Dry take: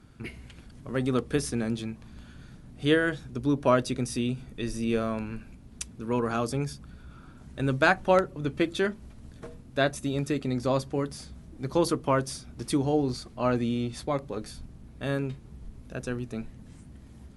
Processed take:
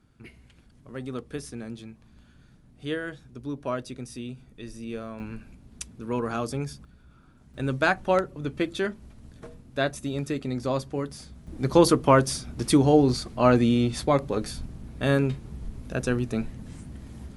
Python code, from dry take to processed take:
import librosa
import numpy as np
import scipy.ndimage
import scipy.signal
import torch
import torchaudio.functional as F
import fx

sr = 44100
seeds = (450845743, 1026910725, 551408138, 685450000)

y = fx.gain(x, sr, db=fx.steps((0.0, -8.0), (5.2, -1.0), (6.85, -7.5), (7.54, -1.0), (11.47, 7.0)))